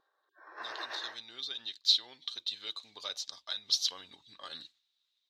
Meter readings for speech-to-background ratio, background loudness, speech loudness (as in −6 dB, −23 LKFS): 10.5 dB, −44.0 LKFS, −33.5 LKFS